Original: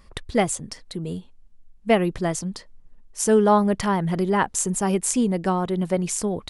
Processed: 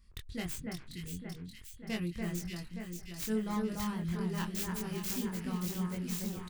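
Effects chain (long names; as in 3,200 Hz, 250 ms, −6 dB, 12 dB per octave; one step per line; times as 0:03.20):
stylus tracing distortion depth 0.34 ms
guitar amp tone stack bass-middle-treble 6-0-2
double-tracking delay 23 ms −2 dB
delay that swaps between a low-pass and a high-pass 289 ms, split 2,100 Hz, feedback 76%, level −2.5 dB
level +1.5 dB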